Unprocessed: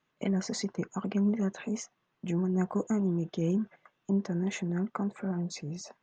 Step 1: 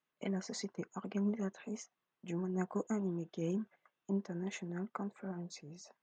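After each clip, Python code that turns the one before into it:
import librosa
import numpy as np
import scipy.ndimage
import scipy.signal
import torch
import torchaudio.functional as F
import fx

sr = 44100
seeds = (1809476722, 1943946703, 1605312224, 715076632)

y = fx.low_shelf(x, sr, hz=170.0, db=-10.5)
y = fx.upward_expand(y, sr, threshold_db=-44.0, expansion=1.5)
y = y * librosa.db_to_amplitude(-2.5)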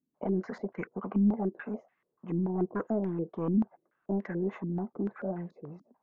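y = 10.0 ** (-32.0 / 20.0) * np.tanh(x / 10.0 ** (-32.0 / 20.0))
y = fx.filter_held_lowpass(y, sr, hz=6.9, low_hz=260.0, high_hz=2000.0)
y = y * librosa.db_to_amplitude(6.0)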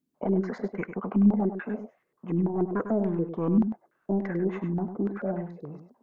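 y = x + 10.0 ** (-9.0 / 20.0) * np.pad(x, (int(100 * sr / 1000.0), 0))[:len(x)]
y = y * librosa.db_to_amplitude(4.0)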